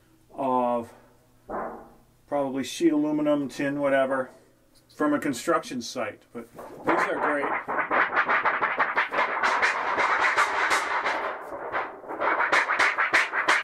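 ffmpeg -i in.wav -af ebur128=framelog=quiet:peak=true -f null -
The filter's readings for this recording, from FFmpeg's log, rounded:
Integrated loudness:
  I:         -24.9 LUFS
  Threshold: -35.5 LUFS
Loudness range:
  LRA:         5.0 LU
  Threshold: -45.6 LUFS
  LRA low:   -28.4 LUFS
  LRA high:  -23.4 LUFS
True peak:
  Peak:       -6.8 dBFS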